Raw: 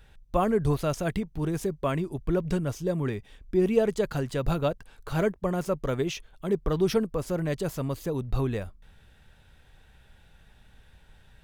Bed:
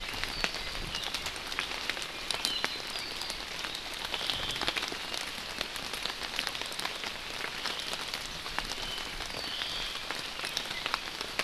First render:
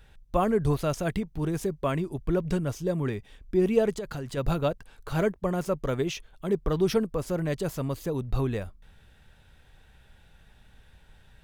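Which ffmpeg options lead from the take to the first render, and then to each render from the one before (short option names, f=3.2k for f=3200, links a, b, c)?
-filter_complex "[0:a]asplit=3[a][b][c];[a]afade=t=out:st=3.94:d=0.02[d];[b]acompressor=threshold=-30dB:ratio=6:attack=3.2:release=140:knee=1:detection=peak,afade=t=in:st=3.94:d=0.02,afade=t=out:st=4.36:d=0.02[e];[c]afade=t=in:st=4.36:d=0.02[f];[d][e][f]amix=inputs=3:normalize=0"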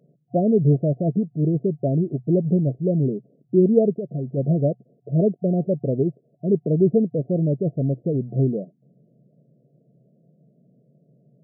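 -af "afftfilt=real='re*between(b*sr/4096,120,720)':imag='im*between(b*sr/4096,120,720)':win_size=4096:overlap=0.75,lowshelf=f=460:g=10.5"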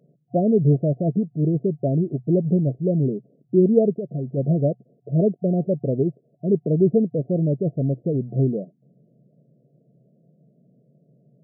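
-af anull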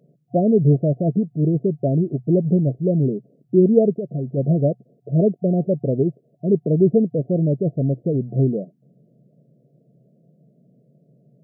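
-af "volume=2dB"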